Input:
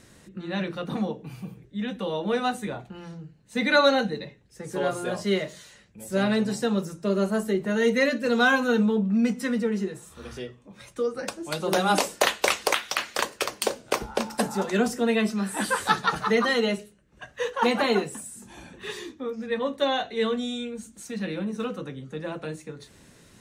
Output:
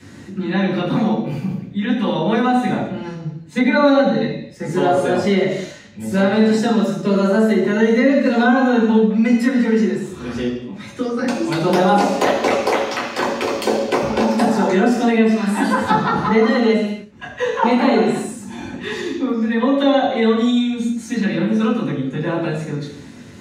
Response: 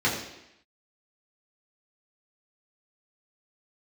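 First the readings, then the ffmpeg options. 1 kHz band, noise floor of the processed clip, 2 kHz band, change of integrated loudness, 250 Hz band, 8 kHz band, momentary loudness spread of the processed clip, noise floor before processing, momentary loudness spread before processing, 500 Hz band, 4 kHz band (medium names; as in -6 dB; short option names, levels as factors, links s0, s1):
+8.5 dB, -38 dBFS, +4.5 dB, +8.5 dB, +11.5 dB, 0.0 dB, 12 LU, -55 dBFS, 17 LU, +8.5 dB, +2.5 dB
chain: -filter_complex "[0:a]equalizer=f=240:w=5.1:g=7.5,bandreject=f=60:t=h:w=6,bandreject=f=120:t=h:w=6,bandreject=f=180:t=h:w=6,bandreject=f=240:t=h:w=6[s0];[1:a]atrim=start_sample=2205,afade=t=out:st=0.36:d=0.01,atrim=end_sample=16317[s1];[s0][s1]afir=irnorm=-1:irlink=0,acrossover=split=420|980[s2][s3][s4];[s2]acompressor=threshold=0.158:ratio=4[s5];[s3]acompressor=threshold=0.251:ratio=4[s6];[s4]acompressor=threshold=0.0562:ratio=4[s7];[s5][s6][s7]amix=inputs=3:normalize=0,bandreject=f=480:w=13,volume=0.841"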